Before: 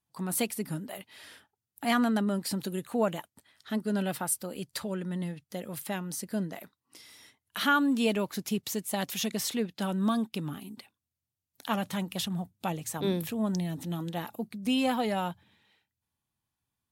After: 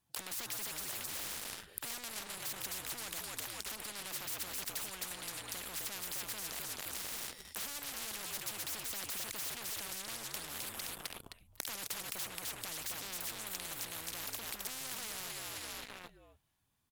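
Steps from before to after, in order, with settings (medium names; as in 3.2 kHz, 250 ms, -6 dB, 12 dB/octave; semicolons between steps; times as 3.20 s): on a send: frequency-shifting echo 261 ms, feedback 35%, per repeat -62 Hz, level -8 dB; on the sum: waveshaping leveller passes 3; peak limiter -25 dBFS, peak gain reduction 10.5 dB; spectrum-flattening compressor 10:1; trim +8.5 dB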